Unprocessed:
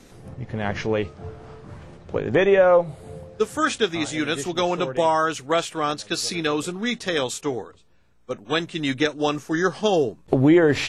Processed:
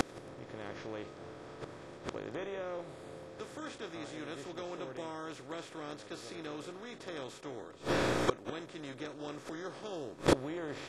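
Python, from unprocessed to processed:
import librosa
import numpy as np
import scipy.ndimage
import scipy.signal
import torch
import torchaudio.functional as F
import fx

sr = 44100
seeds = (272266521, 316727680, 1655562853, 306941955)

y = fx.bin_compress(x, sr, power=0.4)
y = fx.gate_flip(y, sr, shuts_db=-13.0, range_db=-28)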